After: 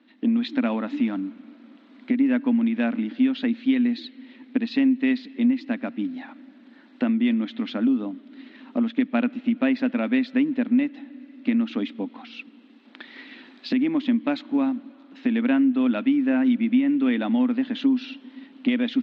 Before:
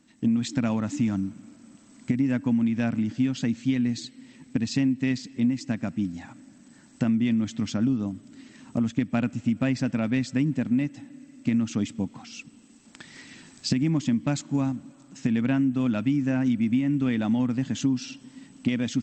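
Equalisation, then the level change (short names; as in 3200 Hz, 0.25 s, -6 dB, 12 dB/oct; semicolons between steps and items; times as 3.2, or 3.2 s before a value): Chebyshev band-pass 240–3900 Hz, order 4; +4.5 dB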